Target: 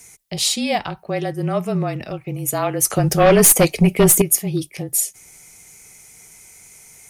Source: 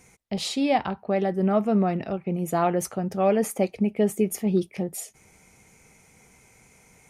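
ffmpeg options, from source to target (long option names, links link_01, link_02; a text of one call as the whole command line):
ffmpeg -i in.wav -filter_complex "[0:a]afreqshift=-30,crystalizer=i=5:c=0,asettb=1/sr,asplit=3[link_01][link_02][link_03];[link_01]atrim=end=2.904[link_04];[link_02]atrim=start=2.9:end=4.22,asetpts=PTS-STARTPTS,afade=type=in:duration=0.004:curve=qsin,afade=type=out:start_time=1.316:duration=0.004:curve=qsin,aeval=exprs='0.562*(cos(1*acos(clip(val(0)/0.562,-1,1)))-cos(1*PI/2))+0.282*(cos(5*acos(clip(val(0)/0.562,-1,1)))-cos(5*PI/2))+0.0891*(cos(6*acos(clip(val(0)/0.562,-1,1)))-cos(6*PI/2))+0.0224*(cos(8*acos(clip(val(0)/0.562,-1,1)))-cos(8*PI/2))':channel_layout=same[link_05];[link_03]atrim=start=4.216[link_06];[link_04][link_05]acrossfade=duration=0.004:curve1=hsin:curve2=qsin[link_07];[link_07][link_06]acrossfade=duration=0.004:curve1=qsin:curve2=hsin" out.wav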